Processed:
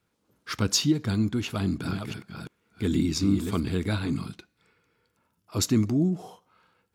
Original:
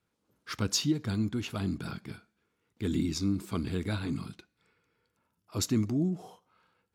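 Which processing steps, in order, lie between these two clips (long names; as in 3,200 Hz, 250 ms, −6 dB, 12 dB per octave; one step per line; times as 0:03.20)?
0:01.45–0:03.60: delay that plays each chunk backwards 344 ms, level −6 dB
level +5 dB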